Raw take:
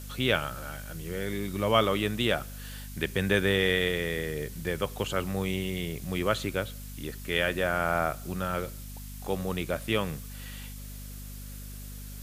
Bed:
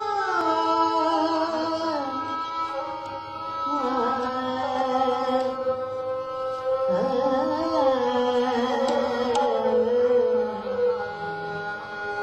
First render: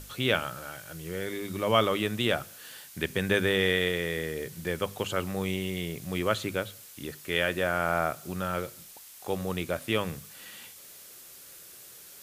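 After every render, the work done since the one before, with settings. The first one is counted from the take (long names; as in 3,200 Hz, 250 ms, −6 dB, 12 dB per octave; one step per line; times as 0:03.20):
mains-hum notches 50/100/150/200/250 Hz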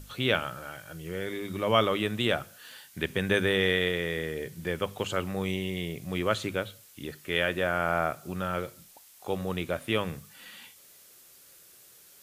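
noise reduction from a noise print 6 dB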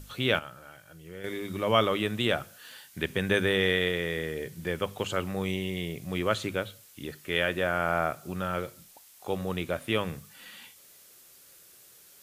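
0:00.39–0:01.24: clip gain −8 dB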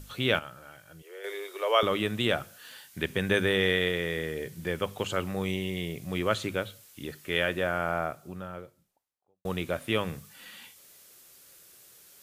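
0:01.02–0:01.83: Butterworth high-pass 360 Hz 72 dB per octave
0:07.33–0:09.45: fade out and dull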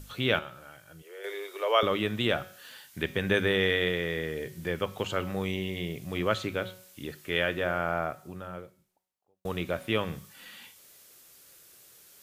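hum removal 185.3 Hz, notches 32
dynamic equaliser 9,500 Hz, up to −7 dB, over −55 dBFS, Q 1.1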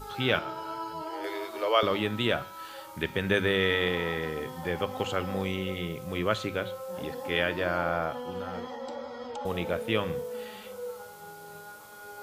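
mix in bed −15 dB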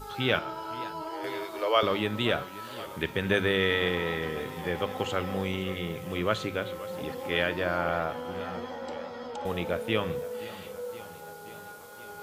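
feedback echo with a swinging delay time 522 ms, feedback 71%, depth 171 cents, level −17.5 dB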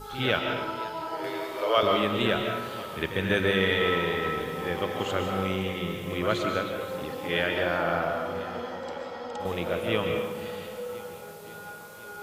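on a send: backwards echo 53 ms −10 dB
on the sum: comb and all-pass reverb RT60 1.1 s, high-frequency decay 0.75×, pre-delay 100 ms, DRR 3.5 dB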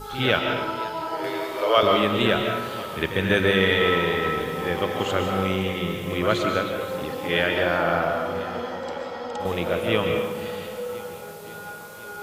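level +4.5 dB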